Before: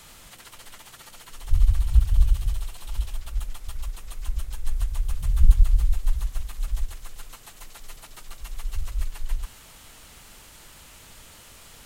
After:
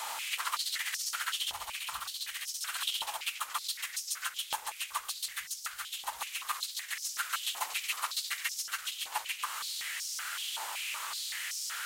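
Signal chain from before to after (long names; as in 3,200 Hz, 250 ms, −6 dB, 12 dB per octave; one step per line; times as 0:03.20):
in parallel at −0.5 dB: downward compressor, threshold −28 dBFS, peak gain reduction 20 dB
on the sum: high-pass on a step sequencer 5.3 Hz 860–5,400 Hz
level +2.5 dB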